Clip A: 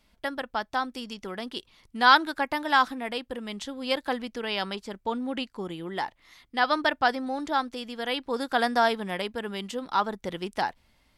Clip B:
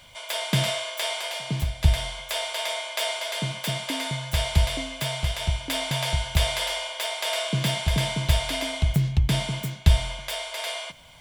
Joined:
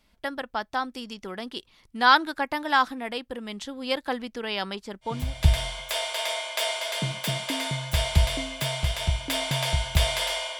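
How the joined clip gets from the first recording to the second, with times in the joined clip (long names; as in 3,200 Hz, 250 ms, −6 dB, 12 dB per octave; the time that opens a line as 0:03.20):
clip A
0:05.19: continue with clip B from 0:01.59, crossfade 0.36 s linear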